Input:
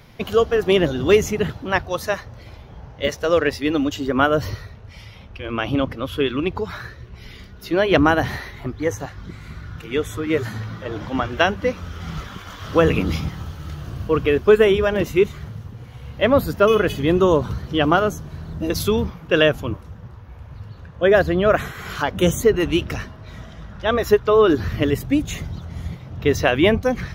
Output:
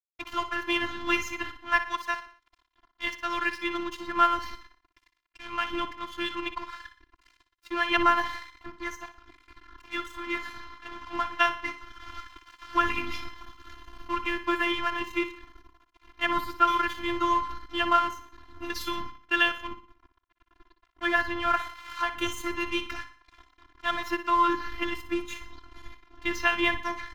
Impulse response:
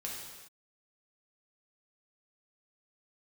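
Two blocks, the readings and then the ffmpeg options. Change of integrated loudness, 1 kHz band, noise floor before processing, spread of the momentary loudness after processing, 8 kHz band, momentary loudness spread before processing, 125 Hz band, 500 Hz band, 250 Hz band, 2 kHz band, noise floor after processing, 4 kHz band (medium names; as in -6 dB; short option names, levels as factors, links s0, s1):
-8.5 dB, -1.5 dB, -41 dBFS, 18 LU, -11.0 dB, 19 LU, -25.5 dB, -19.0 dB, -13.0 dB, -3.5 dB, -74 dBFS, -5.0 dB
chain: -filter_complex "[0:a]aeval=exprs='sgn(val(0))*max(abs(val(0))-0.0237,0)':c=same,firequalizer=gain_entry='entry(230,0);entry(560,-16);entry(870,8);entry(8700,-3)':delay=0.05:min_phase=1,afftfilt=real='hypot(re,im)*cos(PI*b)':imag='0':win_size=512:overlap=0.75,asplit=2[s0][s1];[s1]aecho=0:1:60|120|180|240:0.266|0.114|0.0492|0.0212[s2];[s0][s2]amix=inputs=2:normalize=0,volume=0.562"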